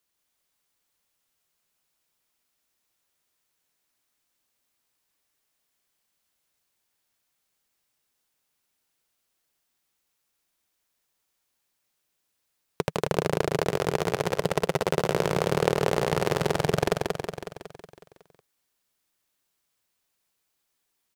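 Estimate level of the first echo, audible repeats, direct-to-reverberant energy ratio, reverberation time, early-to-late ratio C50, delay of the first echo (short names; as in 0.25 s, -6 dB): -3.5 dB, 7, none, none, none, 0.184 s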